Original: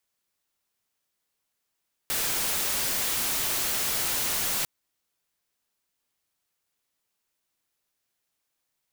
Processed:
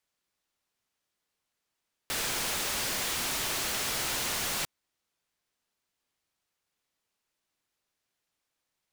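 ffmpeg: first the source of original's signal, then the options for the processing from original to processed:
-f lavfi -i "anoisesrc=c=white:a=0.073:d=2.55:r=44100:seed=1"
-af "highshelf=f=9.6k:g=-10.5"

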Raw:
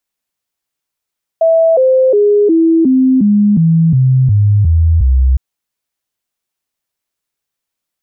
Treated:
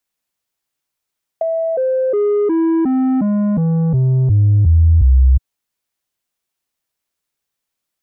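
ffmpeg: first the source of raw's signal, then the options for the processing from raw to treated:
-f lavfi -i "aevalsrc='0.501*clip(min(mod(t,0.36),0.36-mod(t,0.36))/0.005,0,1)*sin(2*PI*655*pow(2,-floor(t/0.36)/3)*mod(t,0.36))':d=3.96:s=44100"
-filter_complex "[0:a]acrossover=split=100|400[a][b][c];[b]asoftclip=type=tanh:threshold=-16.5dB[d];[c]acompressor=threshold=-22dB:ratio=6[e];[a][d][e]amix=inputs=3:normalize=0"

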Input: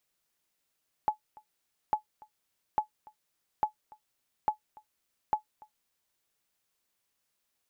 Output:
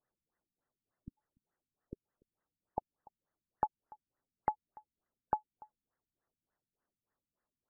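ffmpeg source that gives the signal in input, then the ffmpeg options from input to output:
-f lavfi -i "aevalsrc='0.141*(sin(2*PI*854*mod(t,0.85))*exp(-6.91*mod(t,0.85)/0.11)+0.0596*sin(2*PI*854*max(mod(t,0.85)-0.29,0))*exp(-6.91*max(mod(t,0.85)-0.29,0)/0.11))':d=5.1:s=44100"
-filter_complex "[0:a]asplit=2[a][b];[b]aeval=exprs='val(0)*gte(abs(val(0)),0.00944)':c=same,volume=-8dB[c];[a][c]amix=inputs=2:normalize=0,acompressor=threshold=-30dB:ratio=3,afftfilt=real='re*lt(b*sr/1024,270*pow(2100/270,0.5+0.5*sin(2*PI*3.4*pts/sr)))':imag='im*lt(b*sr/1024,270*pow(2100/270,0.5+0.5*sin(2*PI*3.4*pts/sr)))':win_size=1024:overlap=0.75"

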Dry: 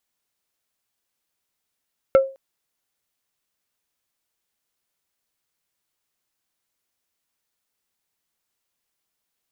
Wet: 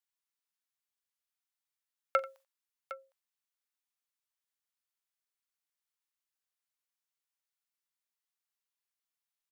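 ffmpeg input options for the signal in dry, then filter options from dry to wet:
-f lavfi -i "aevalsrc='0.447*pow(10,-3*t/0.32)*sin(2*PI*537*t)+0.141*pow(10,-3*t/0.107)*sin(2*PI*1342.5*t)+0.0447*pow(10,-3*t/0.061)*sin(2*PI*2148*t)+0.0141*pow(10,-3*t/0.046)*sin(2*PI*2685*t)+0.00447*pow(10,-3*t/0.034)*sin(2*PI*3490.5*t)':d=0.21:s=44100"
-af "highpass=f=860:w=0.5412,highpass=f=860:w=1.3066,agate=range=-13dB:threshold=-57dB:ratio=16:detection=peak,aecho=1:1:42|88|759:0.106|0.112|0.188"

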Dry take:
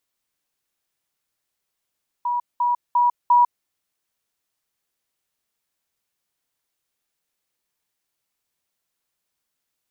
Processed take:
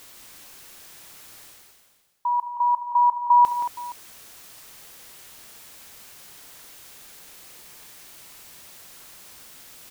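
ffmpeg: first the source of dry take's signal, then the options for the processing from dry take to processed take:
-f lavfi -i "aevalsrc='pow(10,(-20+3*floor(t/0.35))/20)*sin(2*PI*968*t)*clip(min(mod(t,0.35),0.15-mod(t,0.35))/0.005,0,1)':d=1.4:s=44100"
-af "areverse,acompressor=mode=upward:threshold=-21dB:ratio=2.5,areverse,aecho=1:1:67|148|174|226|470:0.133|0.126|0.335|0.266|0.106"

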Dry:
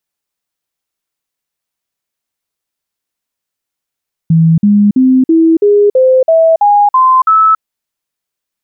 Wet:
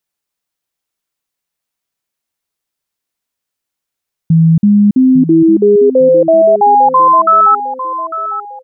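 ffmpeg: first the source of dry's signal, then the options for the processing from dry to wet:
-f lavfi -i "aevalsrc='0.631*clip(min(mod(t,0.33),0.28-mod(t,0.33))/0.005,0,1)*sin(2*PI*163*pow(2,floor(t/0.33)/3)*mod(t,0.33))':d=3.3:s=44100"
-af "aecho=1:1:851|1702|2553:0.266|0.0851|0.0272"

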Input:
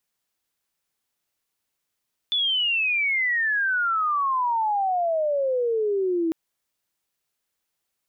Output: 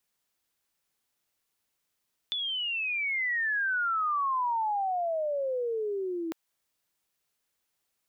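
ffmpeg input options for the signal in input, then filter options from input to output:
-f lavfi -i "aevalsrc='pow(10,(-20-0.5*t/4)/20)*sin(2*PI*3500*4/log(320/3500)*(exp(log(320/3500)*t/4)-1))':d=4:s=44100"
-filter_complex "[0:a]acrossover=split=590|1400[a][b][c];[a]acompressor=threshold=-38dB:ratio=4[d];[b]acompressor=threshold=-35dB:ratio=4[e];[c]acompressor=threshold=-34dB:ratio=4[f];[d][e][f]amix=inputs=3:normalize=0"

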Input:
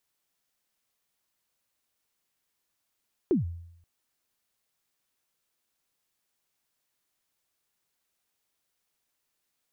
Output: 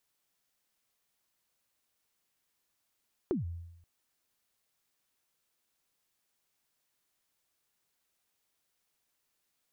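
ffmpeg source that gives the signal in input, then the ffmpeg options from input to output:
-f lavfi -i "aevalsrc='0.126*pow(10,-3*t/0.76)*sin(2*PI*(410*0.136/log(85/410)*(exp(log(85/410)*min(t,0.136)/0.136)-1)+85*max(t-0.136,0)))':d=0.53:s=44100"
-af "acompressor=threshold=-32dB:ratio=4"

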